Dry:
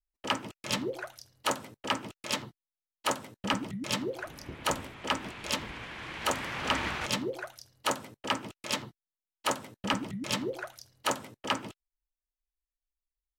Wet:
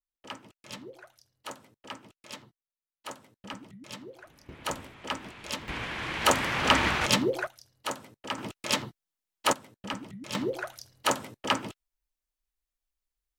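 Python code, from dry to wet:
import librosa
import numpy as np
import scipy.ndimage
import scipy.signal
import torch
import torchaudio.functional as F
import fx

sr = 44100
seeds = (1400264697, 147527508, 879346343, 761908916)

y = fx.gain(x, sr, db=fx.steps((0.0, -11.5), (4.49, -3.5), (5.68, 7.0), (7.47, -4.0), (8.38, 4.5), (9.53, -6.0), (10.35, 3.5)))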